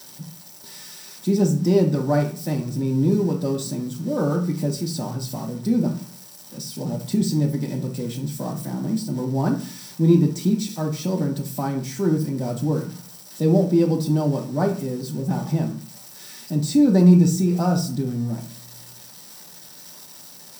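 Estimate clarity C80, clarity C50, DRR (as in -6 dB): 15.0 dB, 9.5 dB, 1.5 dB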